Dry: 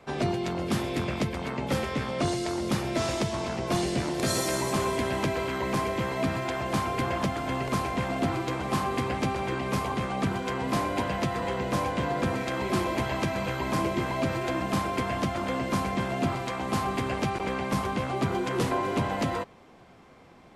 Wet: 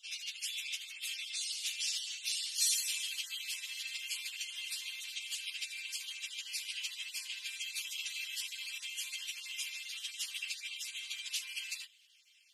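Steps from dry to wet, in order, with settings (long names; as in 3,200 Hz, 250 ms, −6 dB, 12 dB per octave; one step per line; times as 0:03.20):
time-frequency cells dropped at random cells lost 32%
time stretch by phase vocoder 0.61×
Chebyshev high-pass filter 2,700 Hz, order 4
level +8 dB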